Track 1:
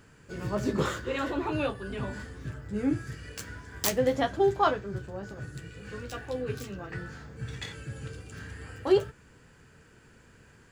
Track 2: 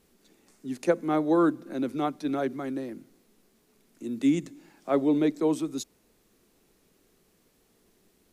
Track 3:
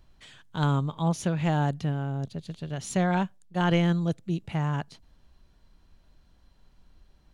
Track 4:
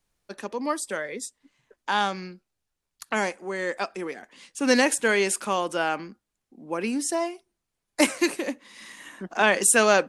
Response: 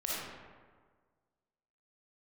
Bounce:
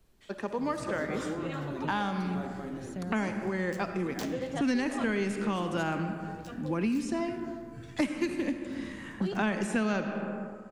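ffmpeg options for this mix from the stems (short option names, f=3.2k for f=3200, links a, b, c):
-filter_complex "[0:a]adelay=350,volume=-10dB,asplit=2[a][b];[b]volume=-13dB[c];[1:a]acompressor=threshold=-27dB:ratio=6,volume=-11.5dB,asplit=2[d][e];[e]volume=-5dB[f];[2:a]acrossover=split=480[g][h];[h]acompressor=threshold=-38dB:ratio=6[i];[g][i]amix=inputs=2:normalize=0,volume=-9dB[j];[3:a]lowpass=f=1.3k:p=1,asubboost=boost=8.5:cutoff=180,volume=1.5dB,asplit=3[k][l][m];[l]volume=-11dB[n];[m]apad=whole_len=323496[o];[j][o]sidechaincompress=threshold=-36dB:ratio=8:attack=16:release=992[p];[4:a]atrim=start_sample=2205[q];[c][f][n]amix=inputs=3:normalize=0[r];[r][q]afir=irnorm=-1:irlink=0[s];[a][d][p][k][s]amix=inputs=5:normalize=0,acrossover=split=97|1800|6200[t][u][v][w];[t]acompressor=threshold=-54dB:ratio=4[x];[u]acompressor=threshold=-29dB:ratio=4[y];[v]acompressor=threshold=-40dB:ratio=4[z];[w]acompressor=threshold=-53dB:ratio=4[aa];[x][y][z][aa]amix=inputs=4:normalize=0"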